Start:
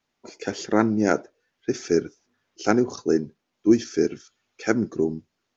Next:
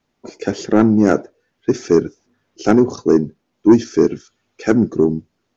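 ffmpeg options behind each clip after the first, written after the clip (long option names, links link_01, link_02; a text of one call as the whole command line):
ffmpeg -i in.wav -af "tiltshelf=frequency=720:gain=4.5,acontrast=82" out.wav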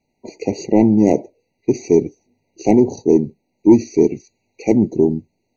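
ffmpeg -i in.wav -af "afftfilt=real='re*eq(mod(floor(b*sr/1024/960),2),0)':imag='im*eq(mod(floor(b*sr/1024/960),2),0)':win_size=1024:overlap=0.75" out.wav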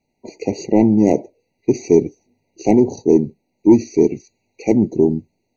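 ffmpeg -i in.wav -af "dynaudnorm=framelen=110:gausssize=7:maxgain=11.5dB,volume=-1dB" out.wav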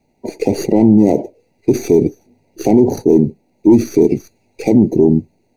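ffmpeg -i in.wav -filter_complex "[0:a]acrossover=split=1500[link_01][link_02];[link_02]aeval=exprs='max(val(0),0)':channel_layout=same[link_03];[link_01][link_03]amix=inputs=2:normalize=0,alimiter=level_in=11.5dB:limit=-1dB:release=50:level=0:latency=1,volume=-1dB" out.wav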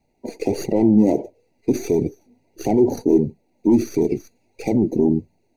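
ffmpeg -i in.wav -af "flanger=delay=0.9:depth=3.6:regen=44:speed=1.5:shape=triangular,volume=-1.5dB" out.wav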